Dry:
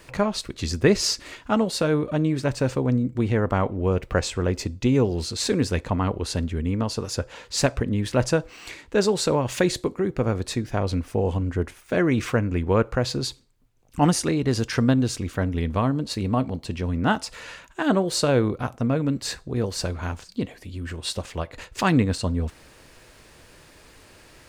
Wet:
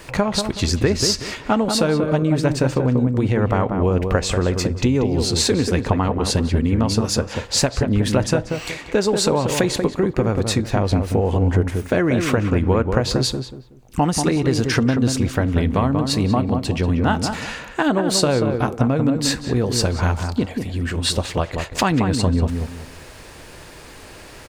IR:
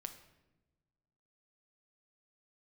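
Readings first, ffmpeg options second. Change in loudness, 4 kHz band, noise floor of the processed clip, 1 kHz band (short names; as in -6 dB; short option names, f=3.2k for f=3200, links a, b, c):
+4.5 dB, +6.5 dB, -41 dBFS, +4.5 dB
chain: -filter_complex "[0:a]equalizer=f=810:t=o:w=0.44:g=2.5,acompressor=threshold=-24dB:ratio=6,asplit=2[a][b];[b]adelay=187,lowpass=f=1.4k:p=1,volume=-5dB,asplit=2[c][d];[d]adelay=187,lowpass=f=1.4k:p=1,volume=0.29,asplit=2[e][f];[f]adelay=187,lowpass=f=1.4k:p=1,volume=0.29,asplit=2[g][h];[h]adelay=187,lowpass=f=1.4k:p=1,volume=0.29[i];[c][e][g][i]amix=inputs=4:normalize=0[j];[a][j]amix=inputs=2:normalize=0,volume=9dB"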